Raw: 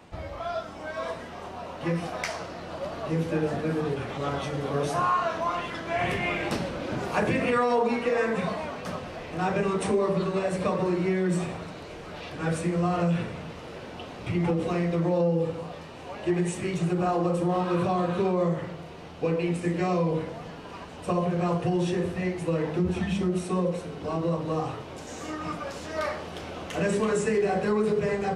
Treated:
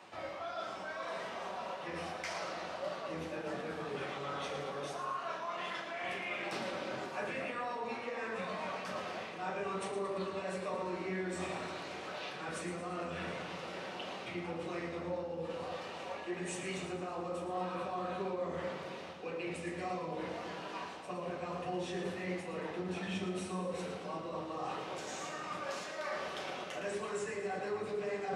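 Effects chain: octave divider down 1 oct, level -4 dB; frequency weighting A; reverse; compression, threshold -37 dBFS, peak gain reduction 15 dB; reverse; flange 1.7 Hz, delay 4.8 ms, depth 7.5 ms, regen -43%; two-band feedback delay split 820 Hz, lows 260 ms, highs 113 ms, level -9 dB; on a send at -4.5 dB: reverberation RT60 0.45 s, pre-delay 5 ms; on the sum: trim +2 dB

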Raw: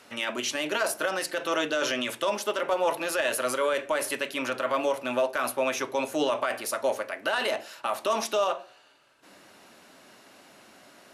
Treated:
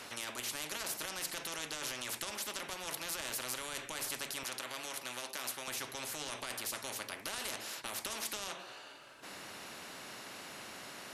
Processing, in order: 4.43–5.68 s: high-pass 800 Hz 6 dB/octave; spectrum-flattening compressor 4:1; trim -6 dB

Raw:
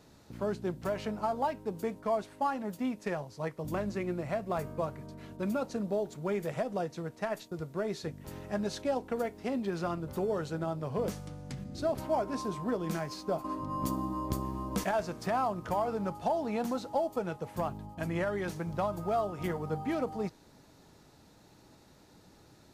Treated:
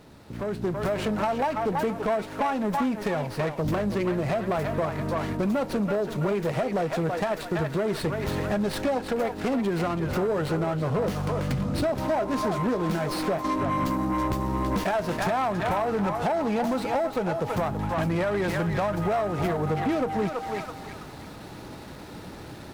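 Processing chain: band-passed feedback delay 329 ms, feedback 42%, band-pass 1.7 kHz, level -5.5 dB; compression, threshold -38 dBFS, peak gain reduction 12 dB; saturation -37.5 dBFS, distortion -14 dB; level rider gain up to 10 dB; sliding maximum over 5 samples; trim +8 dB

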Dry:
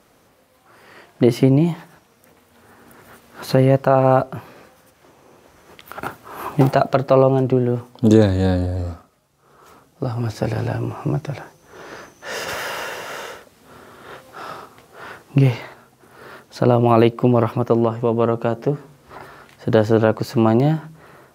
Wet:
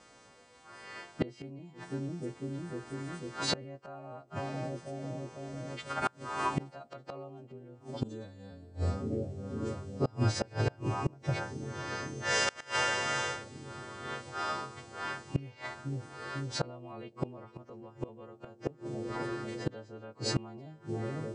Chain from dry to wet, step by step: partials quantised in pitch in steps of 2 st; steep low-pass 8.7 kHz 96 dB/octave; treble shelf 3.9 kHz -6 dB; bucket-brigade echo 498 ms, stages 2048, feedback 82%, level -19 dB; inverted gate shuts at -14 dBFS, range -28 dB; trim -3 dB

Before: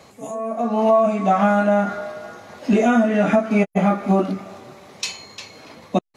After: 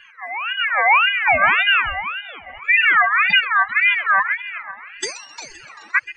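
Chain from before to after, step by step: spectral contrast enhancement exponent 3; multi-head delay 130 ms, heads first and third, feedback 48%, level -16 dB; ring modulator with a swept carrier 1.8 kHz, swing 25%, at 1.8 Hz; trim +4.5 dB

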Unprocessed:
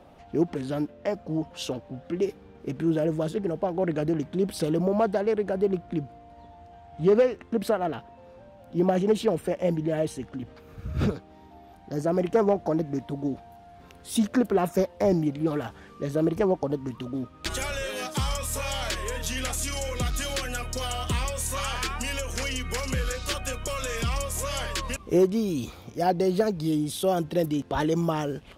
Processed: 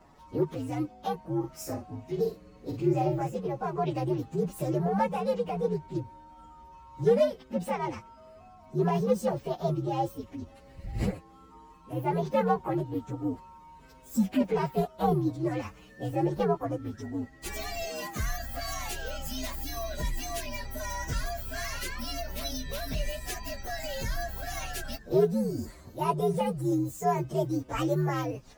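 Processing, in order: frequency axis rescaled in octaves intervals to 127%; 1.39–3.21 s: doubling 46 ms -6 dB; trim -1 dB

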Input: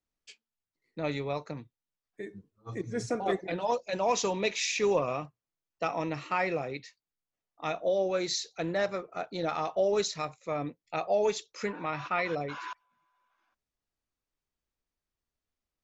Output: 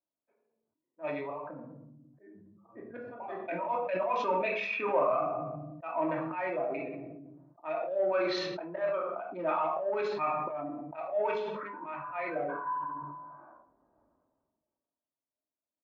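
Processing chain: local Wiener filter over 15 samples; reverb removal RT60 1.9 s; level-controlled noise filter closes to 610 Hz, open at -27 dBFS; comb 1.2 ms, depth 51%; slow attack 202 ms; in parallel at -5 dB: saturation -34 dBFS, distortion -9 dB; on the sum: cabinet simulation 460–2300 Hz, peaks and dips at 810 Hz -5 dB, 1.2 kHz +4 dB, 1.8 kHz -8 dB; simulated room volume 670 m³, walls furnished, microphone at 2.7 m; decay stretcher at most 29 dB/s

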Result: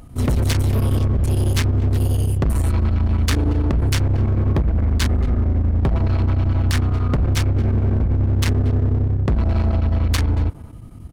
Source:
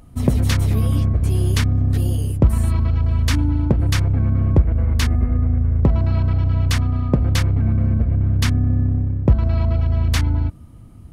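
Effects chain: overload inside the chain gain 19 dB; speakerphone echo 230 ms, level -16 dB; square tremolo 11 Hz, depth 60%, duty 85%; trim +4.5 dB

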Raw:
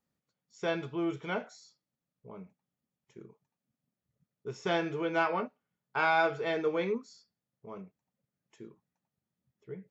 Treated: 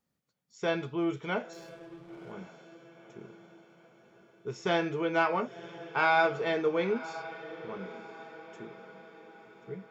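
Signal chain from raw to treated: echo that smears into a reverb 999 ms, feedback 50%, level -15 dB; 1.53–2.32 s: hysteresis with a dead band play -52 dBFS; trim +2 dB

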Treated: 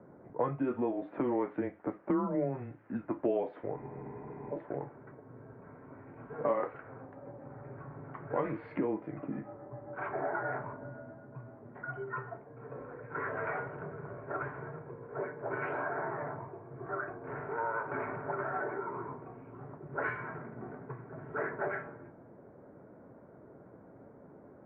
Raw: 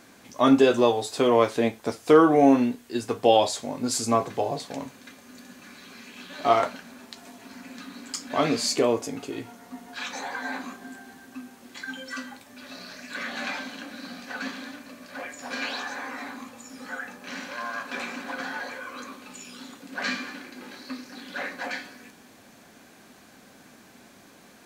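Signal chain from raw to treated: level-controlled noise filter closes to 640 Hz, open at -18.5 dBFS; tilt EQ -2 dB/octave; compression 4:1, threshold -34 dBFS, peak gain reduction 21 dB; mistuned SSB -130 Hz 370–2200 Hz; spectral freeze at 3.78 s, 0.74 s; trim +4 dB

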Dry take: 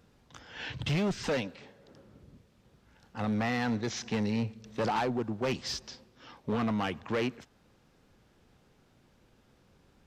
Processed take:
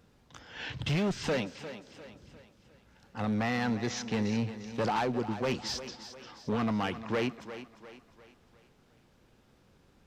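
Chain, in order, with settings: thinning echo 351 ms, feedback 46%, high-pass 190 Hz, level -12 dB

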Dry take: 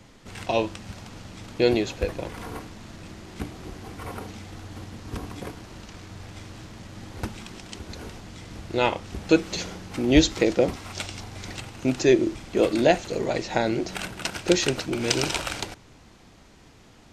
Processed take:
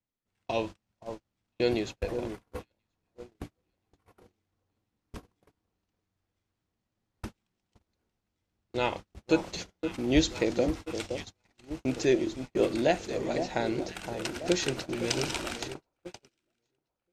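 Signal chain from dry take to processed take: echo whose repeats swap between lows and highs 516 ms, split 1.2 kHz, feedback 70%, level -8 dB; gate -30 dBFS, range -36 dB; trim -6.5 dB

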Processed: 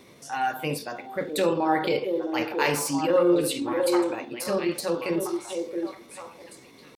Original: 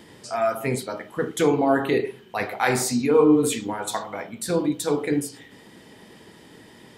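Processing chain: repeats whose band climbs or falls 665 ms, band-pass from 330 Hz, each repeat 1.4 oct, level -2 dB; pitch shift +2.5 st; dynamic bell 3.8 kHz, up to +5 dB, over -45 dBFS, Q 1.3; trim -4 dB

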